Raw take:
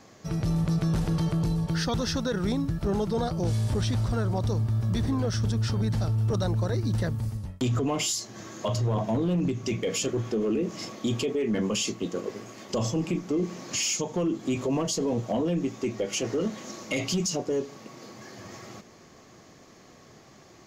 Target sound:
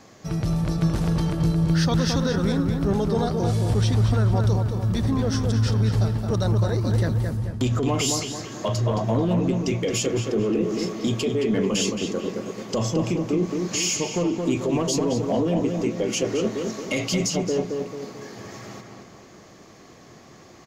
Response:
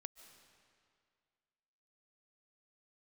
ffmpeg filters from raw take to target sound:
-filter_complex "[0:a]asplit=2[a][b];[b]adelay=220,lowpass=f=2.8k:p=1,volume=-4dB,asplit=2[c][d];[d]adelay=220,lowpass=f=2.8k:p=1,volume=0.46,asplit=2[e][f];[f]adelay=220,lowpass=f=2.8k:p=1,volume=0.46,asplit=2[g][h];[h]adelay=220,lowpass=f=2.8k:p=1,volume=0.46,asplit=2[i][j];[j]adelay=220,lowpass=f=2.8k:p=1,volume=0.46,asplit=2[k][l];[l]adelay=220,lowpass=f=2.8k:p=1,volume=0.46[m];[a][c][e][g][i][k][m]amix=inputs=7:normalize=0,volume=3dB"

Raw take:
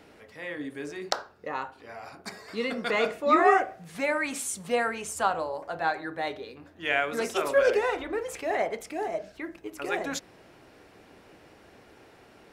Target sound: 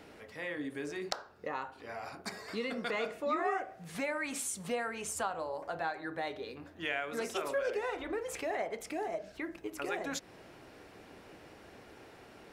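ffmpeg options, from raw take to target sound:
-af "acompressor=threshold=-36dB:ratio=2.5"

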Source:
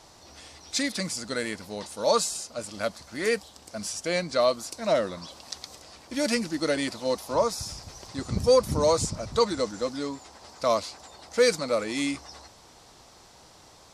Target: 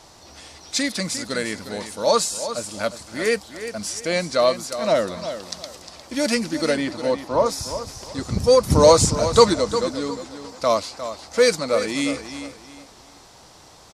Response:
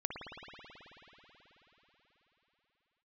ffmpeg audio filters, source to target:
-filter_complex "[0:a]asettb=1/sr,asplit=3[a][b][c];[a]atrim=end=6.774[d];[b]atrim=start=6.77:end=7.46,asetpts=PTS-STARTPTS,afade=t=in:d=0.004:c=qsin,afade=t=out:st=0.686:d=0.004:c=qsin,aemphasis=mode=reproduction:type=75fm[e];[c]atrim=start=7.456[f];[d][e]acrossfade=d=0.004:c1=hsin:c2=qsin[g];[g][f]acrossfade=d=0.004:c1=qsin:c2=hsin,asettb=1/sr,asplit=3[h][i][j];[h]atrim=end=8.704[k];[i]atrim=start=8.7:end=9.54,asetpts=PTS-STARTPTS,afade=t=in:d=0.004:c=qsin,afade=t=out:st=0.836:d=0.004:c=qsin,acontrast=49[l];[j]atrim=start=9.536[m];[k][l]acrossfade=d=0.004:c1=hsin:c2=qsin[n];[n][m]acrossfade=d=0.004:c1=qsin:c2=hsin,asplit=2[o][p];[p]aecho=0:1:355|710|1065:0.282|0.0817|0.0237[q];[o][q]amix=inputs=2:normalize=0,volume=4.5dB"

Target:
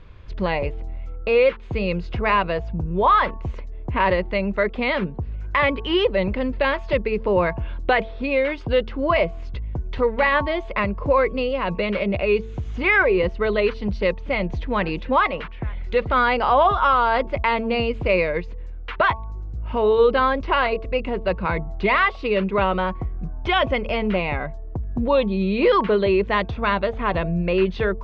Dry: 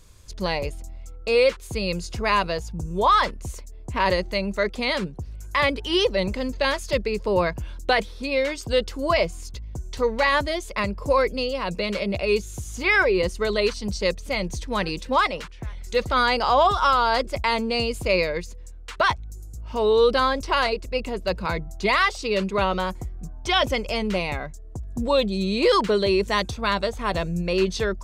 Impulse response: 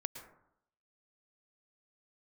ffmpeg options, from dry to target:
-filter_complex "[0:a]lowpass=f=2.9k:w=0.5412,lowpass=f=2.9k:w=1.3066,bandreject=f=222.9:t=h:w=4,bandreject=f=445.8:t=h:w=4,bandreject=f=668.7:t=h:w=4,bandreject=f=891.6:t=h:w=4,bandreject=f=1.1145k:t=h:w=4,asplit=2[a][b];[b]acompressor=threshold=-32dB:ratio=6,volume=2.5dB[c];[a][c]amix=inputs=2:normalize=0"

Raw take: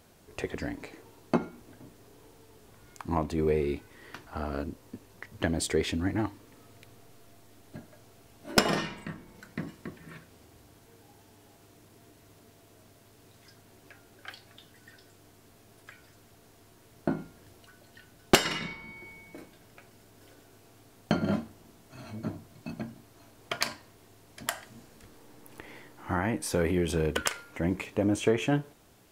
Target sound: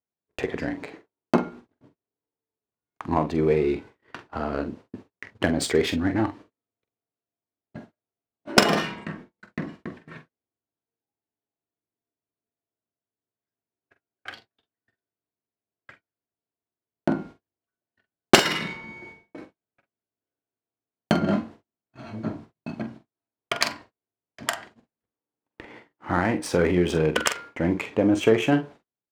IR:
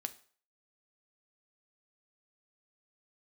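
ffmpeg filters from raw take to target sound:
-filter_complex "[0:a]highpass=f=140:p=1,agate=range=-43dB:threshold=-48dB:ratio=16:detection=peak,adynamicsmooth=sensitivity=7.5:basefreq=3.3k,asplit=2[a][b];[b]adelay=45,volume=-10dB[c];[a][c]amix=inputs=2:normalize=0,volume=6.5dB"

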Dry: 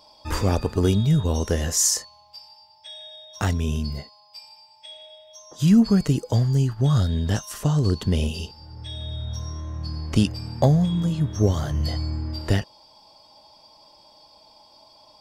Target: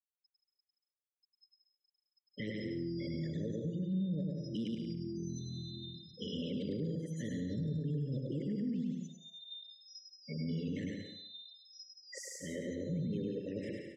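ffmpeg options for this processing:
-filter_complex "[0:a]areverse,highpass=f=150:w=0.5412,highpass=f=150:w=1.3066,afftfilt=real='re*gte(hypot(re,im),0.0224)':imag='im*gte(hypot(re,im),0.0224)':win_size=1024:overlap=0.75,acompressor=threshold=-39dB:ratio=4,bass=f=250:g=2,treble=f=4k:g=-14,aecho=1:1:110|192.5|254.4|300.8|335.6:0.631|0.398|0.251|0.158|0.1,alimiter=level_in=7dB:limit=-24dB:level=0:latency=1:release=23,volume=-7dB,asuperstop=centerf=940:order=20:qfactor=0.84,asplit=2[a][b];[b]adelay=157,lowpass=f=3.6k:p=1,volume=-12.5dB,asplit=2[c][d];[d]adelay=157,lowpass=f=3.6k:p=1,volume=0.16[e];[a][c][e]amix=inputs=3:normalize=0,asetrate=48000,aresample=44100,adynamicequalizer=threshold=0.00141:dfrequency=2700:dqfactor=0.7:tfrequency=2700:tqfactor=0.7:attack=5:release=100:ratio=0.375:range=2:mode=cutabove:tftype=highshelf,volume=1dB"

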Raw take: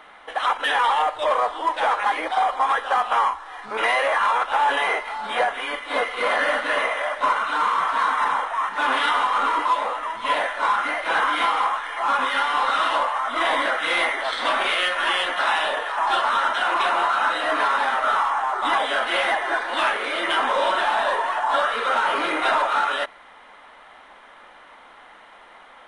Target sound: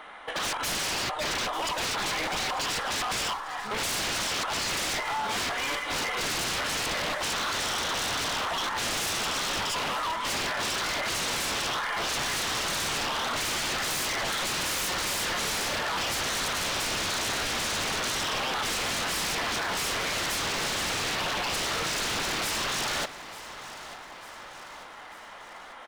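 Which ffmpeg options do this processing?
-af "aeval=exprs='0.0473*(abs(mod(val(0)/0.0473+3,4)-2)-1)':c=same,aecho=1:1:895|1790|2685|3580|4475:0.158|0.0888|0.0497|0.0278|0.0156,volume=1.5dB"

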